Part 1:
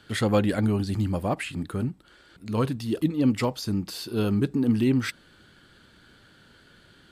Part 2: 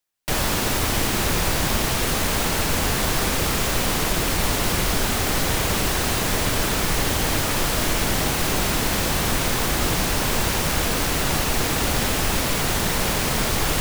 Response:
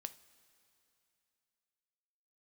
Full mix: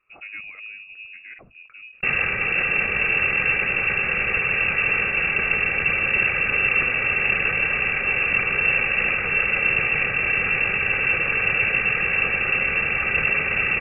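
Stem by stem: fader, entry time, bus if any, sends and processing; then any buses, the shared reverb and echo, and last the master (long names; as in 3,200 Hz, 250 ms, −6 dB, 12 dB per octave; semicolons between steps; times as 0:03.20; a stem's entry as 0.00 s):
−15.0 dB, 0.00 s, no send, no processing
+2.5 dB, 1.75 s, no send, lower of the sound and its delayed copy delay 2.7 ms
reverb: not used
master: voice inversion scrambler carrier 2,700 Hz; parametric band 920 Hz −12.5 dB 0.45 octaves; level that may fall only so fast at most 92 dB per second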